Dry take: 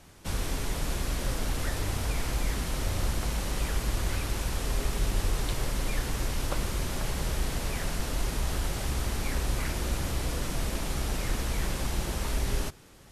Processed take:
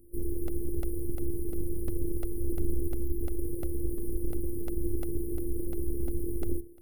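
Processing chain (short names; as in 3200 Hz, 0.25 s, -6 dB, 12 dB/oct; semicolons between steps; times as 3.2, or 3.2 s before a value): half-waves squared off; spectral delete 5.87–6.2, 450–10000 Hz; time stretch by phase-locked vocoder 0.52×; de-hum 68.35 Hz, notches 5; vibrato 1.1 Hz 26 cents; robotiser 344 Hz; dynamic EQ 470 Hz, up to +5 dB, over -51 dBFS, Q 1.3; FFT band-reject 540–9000 Hz; crackling interface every 0.35 s, samples 64, repeat, from 0.48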